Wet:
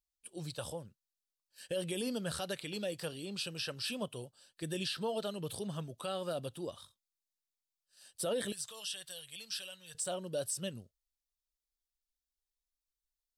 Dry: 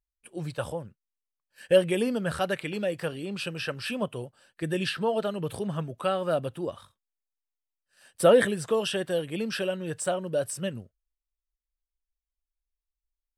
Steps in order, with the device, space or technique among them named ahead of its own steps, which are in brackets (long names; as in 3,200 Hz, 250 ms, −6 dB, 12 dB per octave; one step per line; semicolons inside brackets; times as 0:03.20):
over-bright horn tweeter (high shelf with overshoot 2,900 Hz +9.5 dB, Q 1.5; brickwall limiter −18.5 dBFS, peak gain reduction 11.5 dB)
0:08.52–0:09.95: guitar amp tone stack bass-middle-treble 10-0-10
level −8.5 dB